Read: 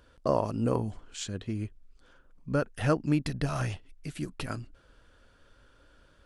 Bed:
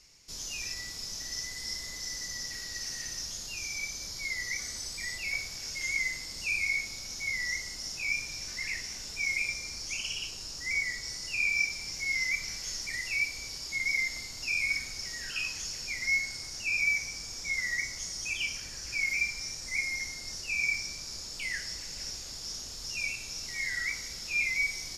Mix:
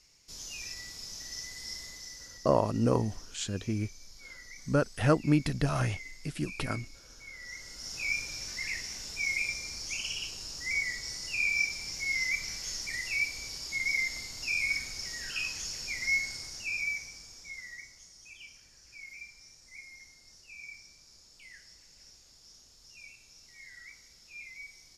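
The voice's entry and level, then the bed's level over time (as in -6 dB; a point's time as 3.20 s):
2.20 s, +1.5 dB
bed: 1.82 s -4 dB
2.56 s -14.5 dB
7.35 s -14.5 dB
7.99 s -0.5 dB
16.32 s -0.5 dB
18.10 s -17 dB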